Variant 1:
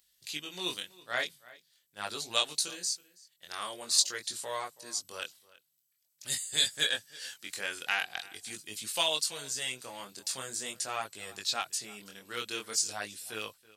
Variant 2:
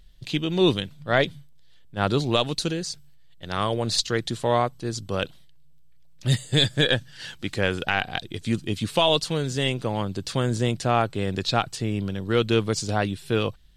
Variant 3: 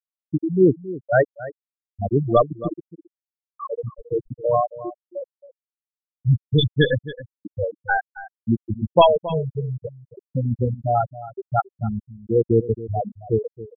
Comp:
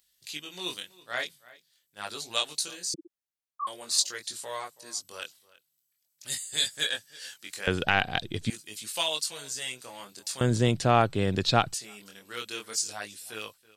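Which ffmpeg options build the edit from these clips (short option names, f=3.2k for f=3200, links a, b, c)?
-filter_complex "[1:a]asplit=2[a][b];[0:a]asplit=4[c][d][e][f];[c]atrim=end=2.942[g];[2:a]atrim=start=2.938:end=3.672[h];[d]atrim=start=3.668:end=7.672[i];[a]atrim=start=7.668:end=8.502[j];[e]atrim=start=8.498:end=10.412[k];[b]atrim=start=10.408:end=11.742[l];[f]atrim=start=11.738[m];[g][h]acrossfade=d=0.004:c1=hsin:c2=hsin[n];[n][i]acrossfade=d=0.004:c1=hsin:c2=hsin[o];[o][j]acrossfade=d=0.004:c1=hsin:c2=hsin[p];[p][k]acrossfade=d=0.004:c1=hsin:c2=hsin[q];[q][l]acrossfade=d=0.004:c1=hsin:c2=hsin[r];[r][m]acrossfade=d=0.004:c1=hsin:c2=hsin"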